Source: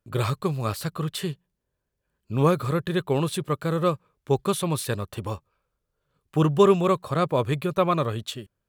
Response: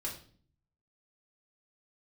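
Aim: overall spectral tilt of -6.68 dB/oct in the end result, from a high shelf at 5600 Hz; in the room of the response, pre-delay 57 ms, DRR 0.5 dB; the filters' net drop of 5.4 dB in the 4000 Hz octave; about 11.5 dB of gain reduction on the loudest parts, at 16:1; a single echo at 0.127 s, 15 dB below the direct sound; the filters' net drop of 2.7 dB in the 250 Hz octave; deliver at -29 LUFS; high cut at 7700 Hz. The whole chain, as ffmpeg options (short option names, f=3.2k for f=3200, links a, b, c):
-filter_complex "[0:a]lowpass=7.7k,equalizer=f=250:t=o:g=-5,equalizer=f=4k:t=o:g=-7.5,highshelf=f=5.6k:g=3.5,acompressor=threshold=-25dB:ratio=16,aecho=1:1:127:0.178,asplit=2[a][b];[1:a]atrim=start_sample=2205,adelay=57[c];[b][c]afir=irnorm=-1:irlink=0,volume=-1.5dB[d];[a][d]amix=inputs=2:normalize=0,volume=-0.5dB"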